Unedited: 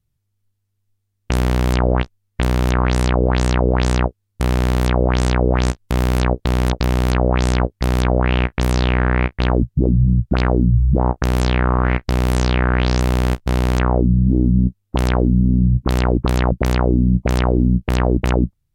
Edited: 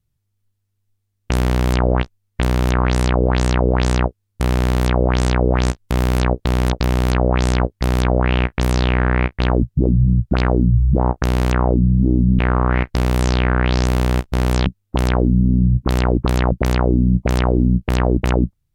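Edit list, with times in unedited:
0:11.26–0:11.53: swap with 0:13.53–0:14.66

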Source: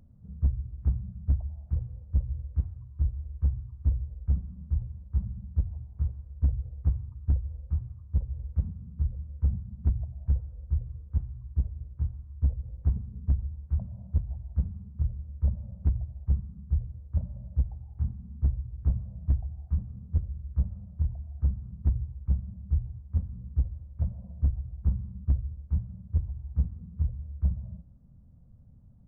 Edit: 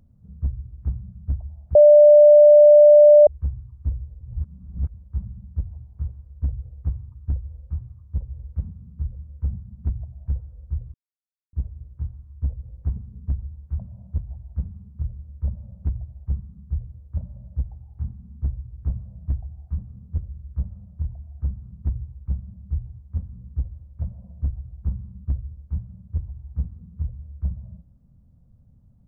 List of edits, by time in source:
0:01.75–0:03.27: beep over 593 Hz −6.5 dBFS
0:04.21–0:04.94: reverse
0:10.94–0:11.53: silence

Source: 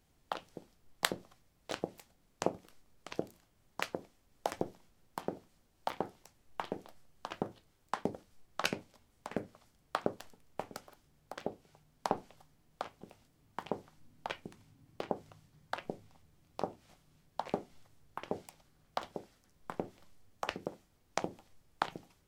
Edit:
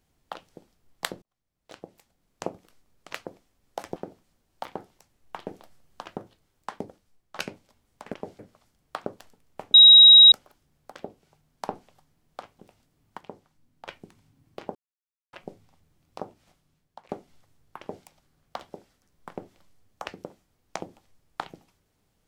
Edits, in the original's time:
0:01.22–0:02.47: fade in
0:03.13–0:03.81: remove
0:04.64–0:05.21: remove
0:06.72–0:07.30: clip gain +3 dB
0:07.99–0:08.60: fade out, to −9.5 dB
0:10.74: insert tone 3,820 Hz −7.5 dBFS 0.58 s
0:13.60–0:14.29: clip gain −5.5 dB
0:15.17–0:15.75: silence
0:16.82–0:17.51: fade out, to −13.5 dB
0:18.22–0:18.47: duplicate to 0:09.39

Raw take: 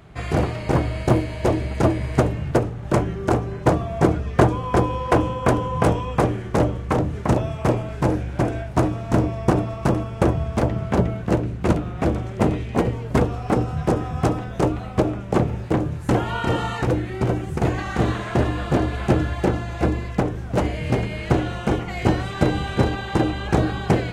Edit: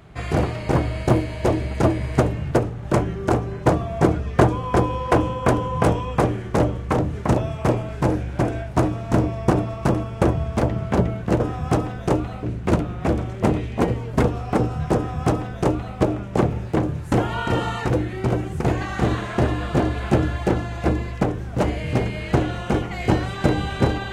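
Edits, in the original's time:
0:13.92–0:14.95: duplicate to 0:11.40

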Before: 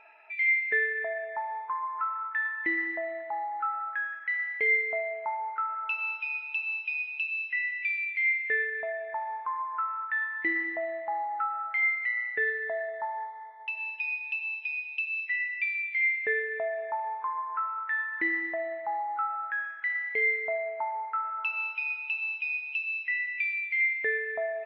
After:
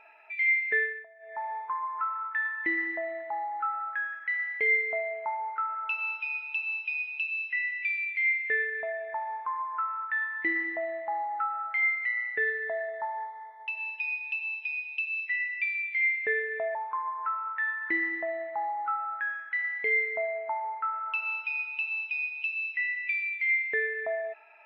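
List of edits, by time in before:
0:00.80–0:01.45: duck −21.5 dB, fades 0.26 s
0:16.75–0:17.06: remove

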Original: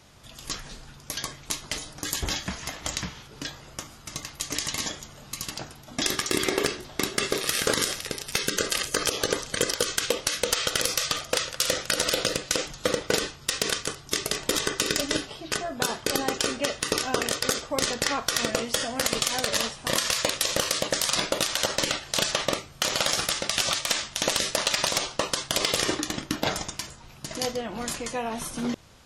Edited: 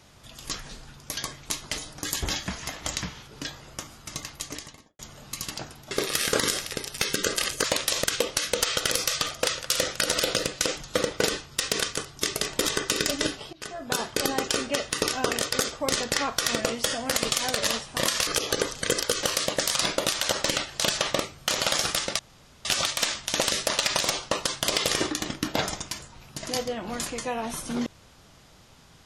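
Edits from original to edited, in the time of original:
0:04.25–0:04.99: fade out and dull
0:05.91–0:07.25: remove
0:08.98–0:09.94: swap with 0:20.17–0:20.57
0:15.43–0:15.89: fade in, from −18.5 dB
0:23.53: splice in room tone 0.46 s

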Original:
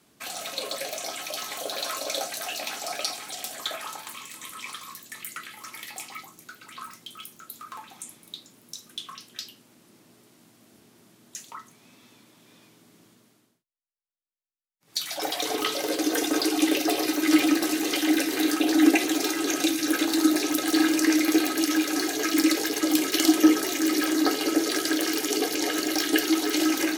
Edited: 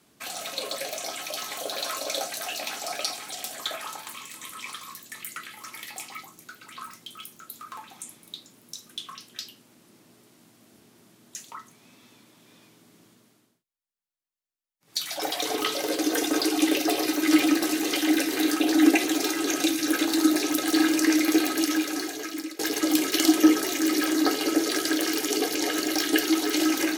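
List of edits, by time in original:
0:21.61–0:22.59: fade out, to −22.5 dB

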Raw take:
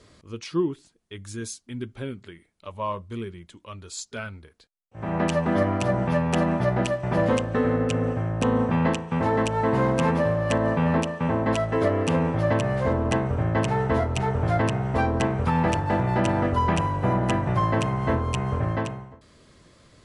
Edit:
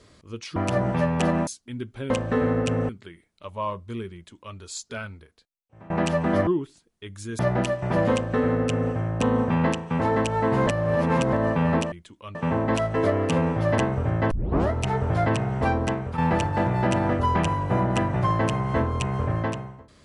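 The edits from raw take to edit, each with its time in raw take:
0:00.56–0:01.48: swap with 0:05.69–0:06.60
0:03.36–0:03.79: duplicate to 0:11.13
0:04.32–0:05.12: fade out, to −20 dB
0:07.33–0:08.12: duplicate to 0:02.11
0:09.88–0:10.54: reverse
0:12.56–0:13.11: remove
0:13.64: tape start 0.40 s
0:15.08–0:15.51: fade out linear, to −9.5 dB

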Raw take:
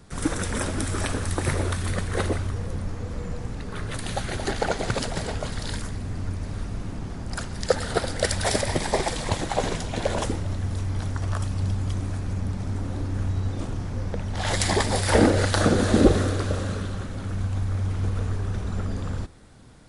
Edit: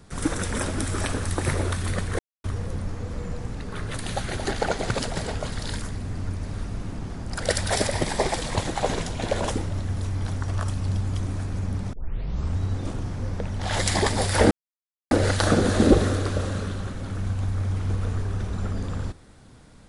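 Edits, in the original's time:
0:02.19–0:02.44: silence
0:07.40–0:08.14: remove
0:12.67: tape start 0.66 s
0:15.25: splice in silence 0.60 s

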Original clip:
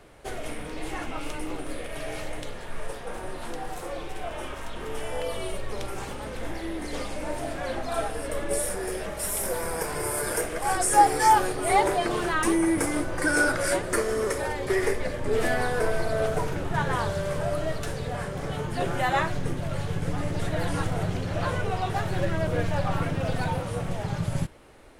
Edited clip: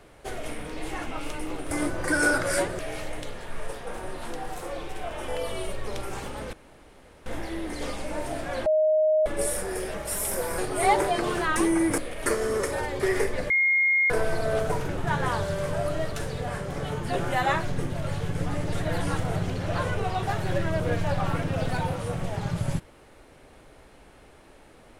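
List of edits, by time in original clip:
0:01.71–0:01.99: swap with 0:12.85–0:13.93
0:04.48–0:05.13: remove
0:06.38: splice in room tone 0.73 s
0:07.78–0:08.38: beep over 622 Hz −18 dBFS
0:09.70–0:11.45: remove
0:15.17–0:15.77: beep over 2,140 Hz −18.5 dBFS

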